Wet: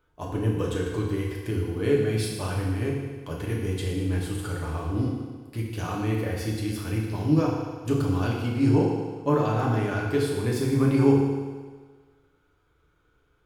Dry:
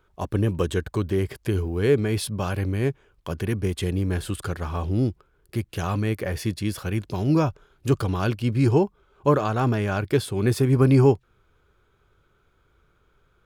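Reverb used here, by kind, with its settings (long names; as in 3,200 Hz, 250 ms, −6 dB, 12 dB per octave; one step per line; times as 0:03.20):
feedback delay network reverb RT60 1.5 s, low-frequency decay 0.85×, high-frequency decay 0.95×, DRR −3.5 dB
level −7.5 dB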